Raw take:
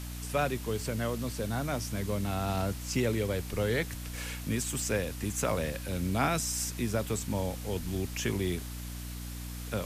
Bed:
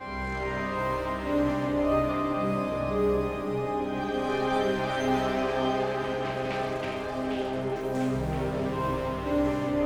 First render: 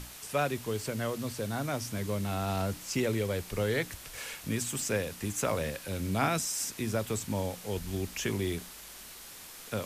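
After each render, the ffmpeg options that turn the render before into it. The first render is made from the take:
-af "bandreject=f=60:t=h:w=6,bandreject=f=120:t=h:w=6,bandreject=f=180:t=h:w=6,bandreject=f=240:t=h:w=6,bandreject=f=300:t=h:w=6"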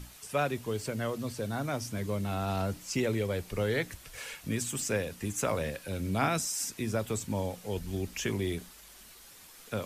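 -af "afftdn=nr=7:nf=-48"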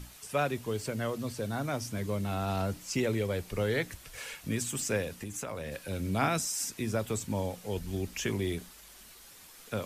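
-filter_complex "[0:a]asettb=1/sr,asplit=3[a][b][c];[a]atrim=end=5.174[d];[b]atrim=start=5.17:end=5.72,asetpts=PTS-STARTPTS,afade=t=in:d=0.004:c=qsin,afade=t=out:st=0.546:d=0.004:c=qsin,acompressor=threshold=-34dB:ratio=6:attack=3.2:release=140:knee=1:detection=peak[e];[c]atrim=start=5.716[f];[d][e]acrossfade=d=0.004:c1=hsin:c2=qsin[g];[g][f]acrossfade=d=0.004:c1=qsin:c2=hsin"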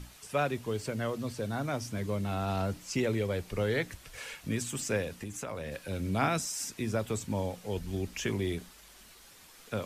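-af "highshelf=f=8.6k:g=-6.5"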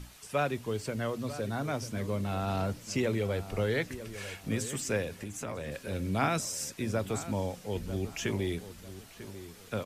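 -filter_complex "[0:a]asplit=2[a][b];[b]adelay=945,lowpass=f=1.9k:p=1,volume=-13dB,asplit=2[c][d];[d]adelay=945,lowpass=f=1.9k:p=1,volume=0.31,asplit=2[e][f];[f]adelay=945,lowpass=f=1.9k:p=1,volume=0.31[g];[a][c][e][g]amix=inputs=4:normalize=0"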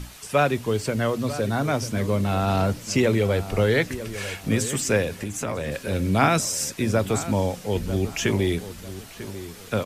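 -af "volume=9.5dB"

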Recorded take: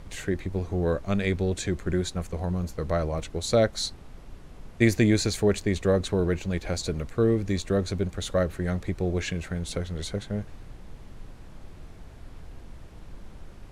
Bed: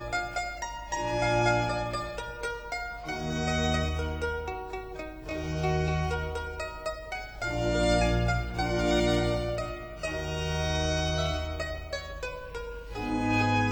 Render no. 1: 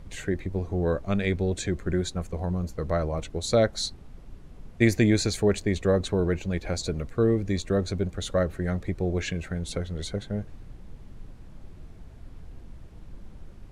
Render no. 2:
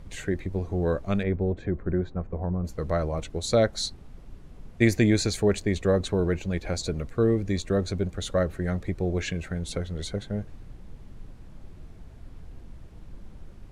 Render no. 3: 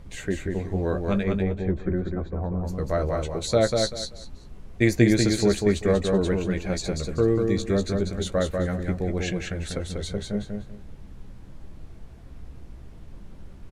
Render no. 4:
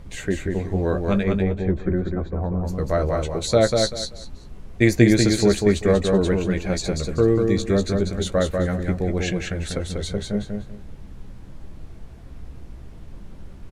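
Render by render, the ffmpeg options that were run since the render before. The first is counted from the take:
-af "afftdn=nr=6:nf=-46"
-filter_complex "[0:a]asettb=1/sr,asplit=3[a][b][c];[a]atrim=end=1.234[d];[b]atrim=start=1.23:end=2.65,asetpts=PTS-STARTPTS,afade=t=in:d=0.004:c=qsin,afade=t=out:st=1.416:d=0.004:c=qsin,lowpass=1.3k[e];[c]atrim=start=2.646[f];[d][e]acrossfade=d=0.004:c1=hsin:c2=qsin[g];[g][f]acrossfade=d=0.004:c1=qsin:c2=hsin"
-filter_complex "[0:a]asplit=2[a][b];[b]adelay=15,volume=-9dB[c];[a][c]amix=inputs=2:normalize=0,asplit=2[d][e];[e]aecho=0:1:193|386|579:0.631|0.145|0.0334[f];[d][f]amix=inputs=2:normalize=0"
-af "volume=3.5dB"

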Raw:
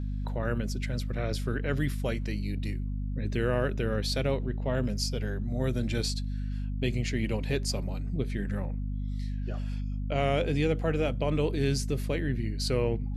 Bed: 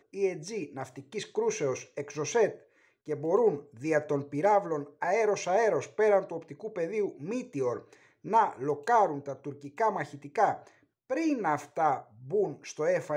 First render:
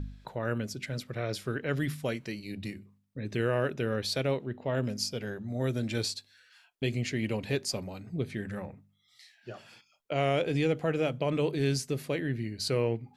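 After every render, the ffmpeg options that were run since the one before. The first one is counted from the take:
-af "bandreject=f=50:t=h:w=4,bandreject=f=100:t=h:w=4,bandreject=f=150:t=h:w=4,bandreject=f=200:t=h:w=4,bandreject=f=250:t=h:w=4"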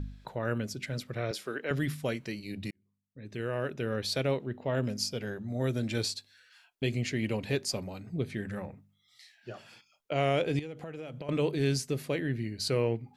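-filter_complex "[0:a]asettb=1/sr,asplit=3[a][b][c];[a]atrim=end=1.314[d];[b]atrim=start=1.31:end=1.71,asetpts=PTS-STARTPTS,afade=t=in:d=0.004:c=qsin,afade=t=out:st=0.396:d=0.004:c=qsin,highpass=320[e];[c]atrim=start=1.706[f];[d][e]acrossfade=d=0.004:c1=hsin:c2=qsin[g];[g][f]acrossfade=d=0.004:c1=qsin:c2=hsin,asettb=1/sr,asplit=3[h][i][j];[h]atrim=end=10.594[k];[i]atrim=start=10.59:end=11.29,asetpts=PTS-STARTPTS,afade=t=in:d=0.004:c=qsin,afade=t=out:st=0.696:d=0.004:c=qsin,acompressor=threshold=-37dB:ratio=8:attack=3.2:release=140:knee=1:detection=peak[l];[j]atrim=start=11.286[m];[k][l]acrossfade=d=0.004:c1=hsin:c2=qsin[n];[n][m]acrossfade=d=0.004:c1=qsin:c2=hsin,asplit=2[o][p];[o]atrim=end=2.71,asetpts=PTS-STARTPTS,afade=t=out:st=2.706:d=0.004:c=hsin[q];[p]atrim=start=2.71,asetpts=PTS-STARTPTS,afade=t=in:d=1.46[r];[q][r]concat=n=2:v=0:a=1"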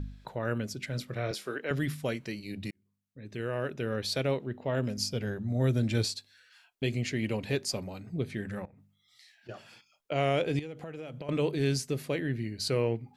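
-filter_complex "[0:a]asettb=1/sr,asplit=3[a][b][c];[a]atrim=end=0.924[d];[b]atrim=start=0.92:end=1.56,asetpts=PTS-STARTPTS,afade=t=in:d=0.004:c=qsin,afade=t=out:st=0.636:d=0.004:c=qsin,asplit=2[e][f];[f]adelay=24,volume=-9.5dB[g];[e][g]amix=inputs=2:normalize=0,atrim=end_sample=28224[h];[c]atrim=start=1.556[i];[d][h]acrossfade=d=0.004:c1=hsin:c2=qsin[j];[j][i]acrossfade=d=0.004:c1=qsin:c2=hsin,asettb=1/sr,asplit=3[k][l][m];[k]atrim=end=4.974[n];[l]atrim=start=4.97:end=6.06,asetpts=PTS-STARTPTS,afade=t=in:d=0.004:c=qsin,afade=t=out:st=1.086:d=0.004:c=qsin,equalizer=f=66:w=0.38:g=7.5[o];[m]atrim=start=6.056[p];[n][o]acrossfade=d=0.004:c1=hsin:c2=qsin[q];[q][p]acrossfade=d=0.004:c1=qsin:c2=hsin,asettb=1/sr,asplit=3[r][s][t];[r]atrim=end=8.654[u];[s]atrim=start=8.65:end=9.49,asetpts=PTS-STARTPTS,afade=t=in:d=0.004:c=qsin,afade=t=out:st=0.836:d=0.004:c=qsin,acompressor=threshold=-52dB:ratio=8:attack=3.2:release=140:knee=1:detection=peak[v];[t]atrim=start=9.486[w];[u][v]acrossfade=d=0.004:c1=hsin:c2=qsin[x];[x][w]acrossfade=d=0.004:c1=qsin:c2=hsin"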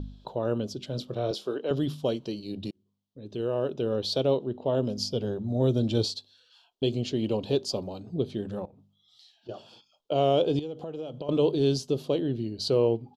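-af "firequalizer=gain_entry='entry(130,0);entry(360,7);entry(1000,3);entry(2000,-20);entry(3100,6);entry(8700,-9)':delay=0.05:min_phase=1"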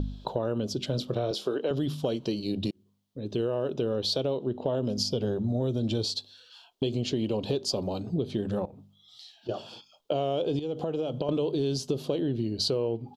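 -filter_complex "[0:a]asplit=2[a][b];[b]alimiter=limit=-21.5dB:level=0:latency=1,volume=2.5dB[c];[a][c]amix=inputs=2:normalize=0,acompressor=threshold=-25dB:ratio=6"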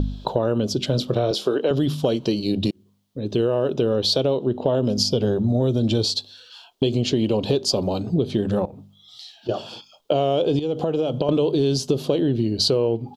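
-af "volume=8dB"

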